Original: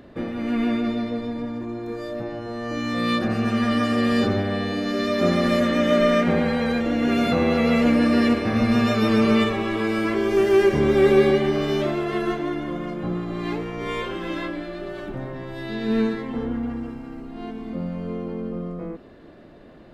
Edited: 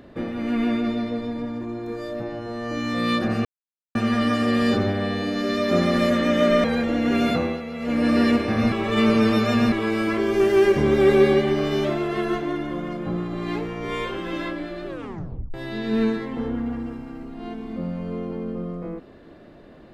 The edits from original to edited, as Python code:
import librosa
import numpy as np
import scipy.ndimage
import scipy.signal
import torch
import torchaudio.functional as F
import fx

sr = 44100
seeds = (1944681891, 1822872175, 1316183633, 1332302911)

y = fx.edit(x, sr, fx.insert_silence(at_s=3.45, length_s=0.5),
    fx.cut(start_s=6.14, length_s=0.47),
    fx.fade_down_up(start_s=7.26, length_s=0.83, db=-13.5, fade_s=0.33),
    fx.reverse_span(start_s=8.69, length_s=1.0),
    fx.tape_stop(start_s=14.84, length_s=0.67), tone=tone)